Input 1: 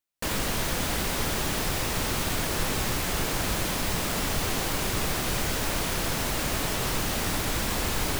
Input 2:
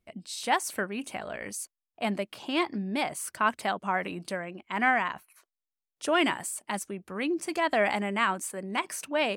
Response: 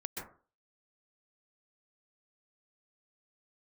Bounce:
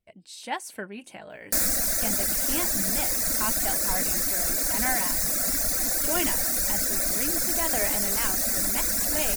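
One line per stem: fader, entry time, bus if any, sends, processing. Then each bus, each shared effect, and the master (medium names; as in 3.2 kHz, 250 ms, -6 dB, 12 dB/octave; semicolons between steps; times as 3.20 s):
+2.5 dB, 1.30 s, no send, static phaser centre 610 Hz, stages 8; reverb removal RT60 1.9 s; tone controls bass -3 dB, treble +11 dB
-1.0 dB, 0.00 s, no send, flange 0.25 Hz, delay 1.5 ms, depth 7.7 ms, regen -42%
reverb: none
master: peaking EQ 1.2 kHz -10.5 dB 0.21 oct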